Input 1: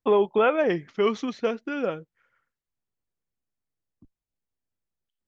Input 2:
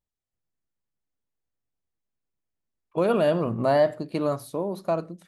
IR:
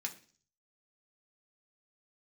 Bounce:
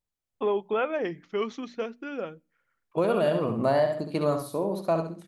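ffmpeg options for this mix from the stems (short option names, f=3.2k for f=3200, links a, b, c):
-filter_complex "[0:a]adelay=350,volume=-6.5dB,asplit=2[a][b];[b]volume=-21.5dB[c];[1:a]volume=0dB,asplit=2[d][e];[e]volume=-7dB[f];[2:a]atrim=start_sample=2205[g];[c][g]afir=irnorm=-1:irlink=0[h];[f]aecho=0:1:67|134|201|268:1|0.27|0.0729|0.0197[i];[a][d][h][i]amix=inputs=4:normalize=0,bandreject=f=60:t=h:w=6,bandreject=f=120:t=h:w=6,bandreject=f=180:t=h:w=6,bandreject=f=240:t=h:w=6,bandreject=f=300:t=h:w=6,alimiter=limit=-14.5dB:level=0:latency=1:release=161"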